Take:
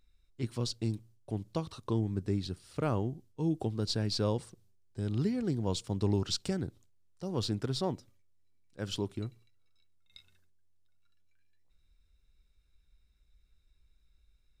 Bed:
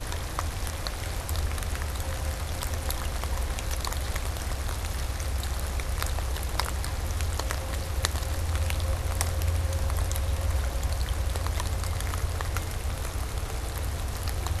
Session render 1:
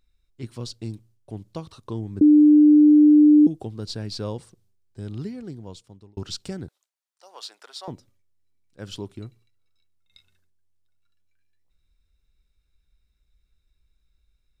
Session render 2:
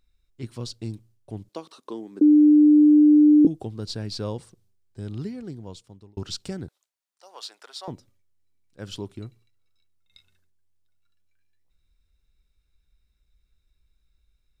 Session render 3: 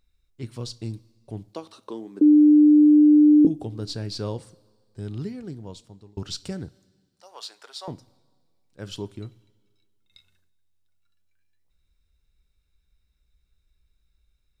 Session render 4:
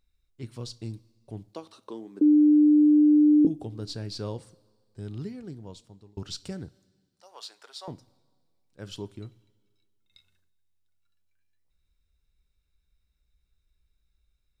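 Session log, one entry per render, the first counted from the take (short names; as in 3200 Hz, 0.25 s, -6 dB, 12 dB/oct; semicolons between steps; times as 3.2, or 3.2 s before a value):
2.21–3.47 bleep 299 Hz -9.5 dBFS; 5.02–6.17 fade out; 6.68–7.88 HPF 680 Hz 24 dB/oct
1.49–3.45 HPF 260 Hz 24 dB/oct
two-slope reverb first 0.3 s, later 1.8 s, from -17 dB, DRR 13.5 dB
gain -4 dB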